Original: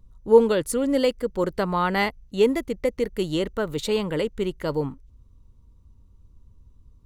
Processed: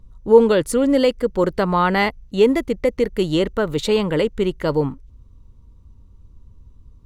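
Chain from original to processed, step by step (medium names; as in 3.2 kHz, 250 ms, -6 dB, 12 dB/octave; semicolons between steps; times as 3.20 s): treble shelf 7.5 kHz -7.5 dB; in parallel at -2.5 dB: peak limiter -15.5 dBFS, peak gain reduction 11 dB; on the sum: trim +1.5 dB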